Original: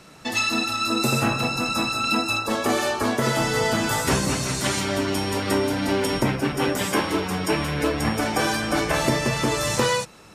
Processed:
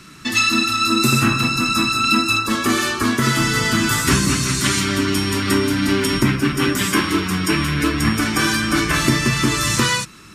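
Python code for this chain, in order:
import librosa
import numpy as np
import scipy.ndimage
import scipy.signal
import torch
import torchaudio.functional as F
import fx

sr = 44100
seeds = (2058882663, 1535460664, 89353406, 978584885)

y = fx.band_shelf(x, sr, hz=630.0, db=-14.5, octaves=1.2)
y = y * librosa.db_to_amplitude(6.5)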